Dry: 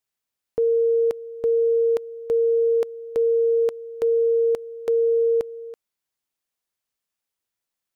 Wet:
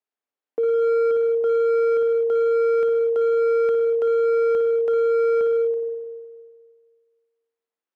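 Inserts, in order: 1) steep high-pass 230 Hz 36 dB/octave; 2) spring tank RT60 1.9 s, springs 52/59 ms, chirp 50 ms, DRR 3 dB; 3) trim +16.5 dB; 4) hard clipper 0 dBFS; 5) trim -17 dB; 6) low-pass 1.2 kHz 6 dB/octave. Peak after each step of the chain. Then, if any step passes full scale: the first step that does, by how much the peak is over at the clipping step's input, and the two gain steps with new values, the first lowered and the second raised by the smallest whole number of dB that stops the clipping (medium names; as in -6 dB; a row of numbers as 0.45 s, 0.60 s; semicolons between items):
-12.5 dBFS, -8.5 dBFS, +8.0 dBFS, 0.0 dBFS, -17.0 dBFS, -17.0 dBFS; step 3, 8.0 dB; step 3 +8.5 dB, step 5 -9 dB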